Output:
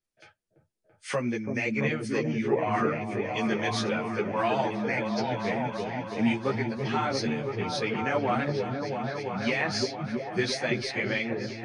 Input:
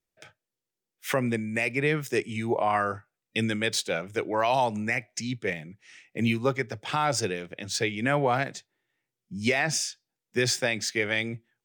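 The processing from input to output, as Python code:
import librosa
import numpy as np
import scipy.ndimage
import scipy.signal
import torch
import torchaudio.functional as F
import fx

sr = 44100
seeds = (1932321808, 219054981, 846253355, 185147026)

y = fx.freq_compress(x, sr, knee_hz=3100.0, ratio=1.5)
y = fx.echo_opening(y, sr, ms=336, hz=400, octaves=1, feedback_pct=70, wet_db=0)
y = fx.ensemble(y, sr)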